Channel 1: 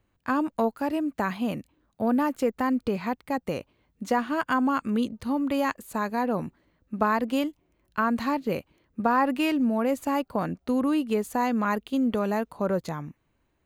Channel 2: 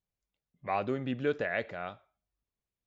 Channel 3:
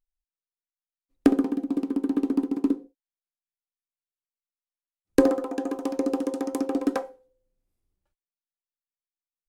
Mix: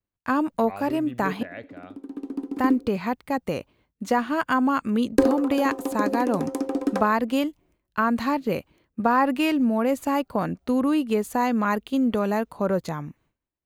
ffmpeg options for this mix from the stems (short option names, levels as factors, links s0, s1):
-filter_complex "[0:a]volume=1.33,asplit=3[s0][s1][s2];[s0]atrim=end=1.43,asetpts=PTS-STARTPTS,afade=t=out:st=1.426:d=0.004:c=hsin[s3];[s1]atrim=start=1.43:end=2.52,asetpts=PTS-STARTPTS,volume=0[s4];[s2]atrim=start=2.52,asetpts=PTS-STARTPTS,afade=t=in:d=0.004:c=hsin[s5];[s3][s4][s5]concat=n=3:v=0:a=1[s6];[1:a]lowshelf=f=380:g=7,volume=0.398,asplit=2[s7][s8];[2:a]volume=1[s9];[s8]apad=whole_len=418219[s10];[s9][s10]sidechaincompress=threshold=0.00282:ratio=8:attack=6.1:release=862[s11];[s6][s7][s11]amix=inputs=3:normalize=0,agate=range=0.0224:threshold=0.00178:ratio=3:detection=peak"